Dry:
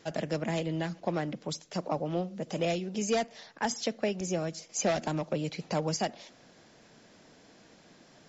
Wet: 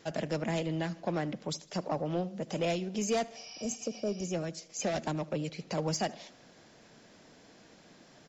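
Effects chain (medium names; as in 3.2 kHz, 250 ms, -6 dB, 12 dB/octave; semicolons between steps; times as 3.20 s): 3.38–4.25 s: spectral replace 660–5900 Hz after; 3.75–5.78 s: rotary cabinet horn 8 Hz; saturation -21 dBFS, distortion -20 dB; feedback delay 77 ms, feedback 52%, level -22 dB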